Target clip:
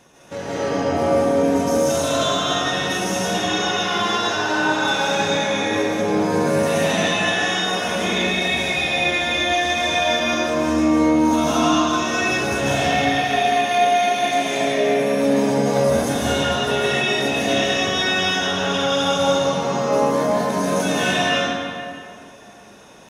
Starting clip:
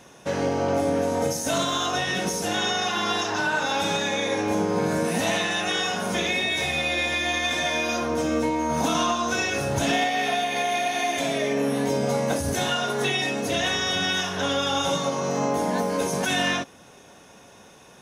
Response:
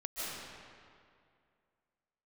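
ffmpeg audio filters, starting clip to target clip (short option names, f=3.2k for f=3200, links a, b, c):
-filter_complex "[0:a]atempo=0.78[a];[1:a]atrim=start_sample=2205[b];[a][b]afir=irnorm=-1:irlink=0,volume=1.5dB"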